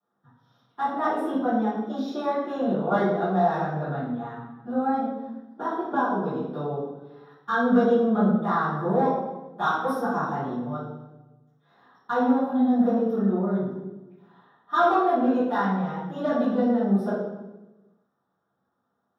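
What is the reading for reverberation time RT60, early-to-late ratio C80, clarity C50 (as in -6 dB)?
1.1 s, 3.5 dB, 0.5 dB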